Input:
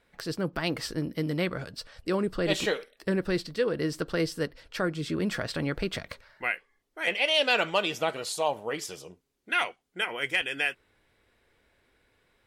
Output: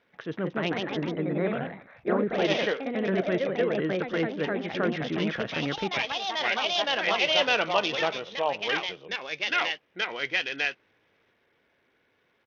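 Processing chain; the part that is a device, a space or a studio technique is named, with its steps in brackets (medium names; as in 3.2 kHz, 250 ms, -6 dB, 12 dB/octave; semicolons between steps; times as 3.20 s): 0.79–2.35 s: steep low-pass 2 kHz 48 dB/octave; ever faster or slower copies 209 ms, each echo +2 st, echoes 3; Bluetooth headset (high-pass 140 Hz 12 dB/octave; resampled via 8 kHz; SBC 64 kbps 48 kHz)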